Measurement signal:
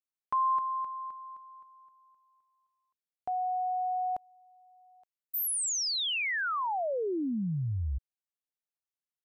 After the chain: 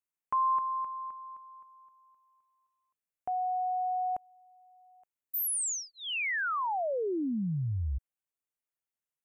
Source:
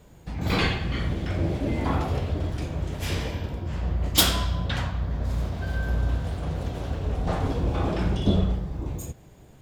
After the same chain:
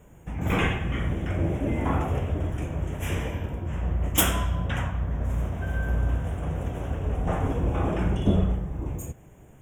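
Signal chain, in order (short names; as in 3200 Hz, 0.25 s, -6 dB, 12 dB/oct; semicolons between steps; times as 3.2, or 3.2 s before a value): Butterworth band-stop 4400 Hz, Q 1.3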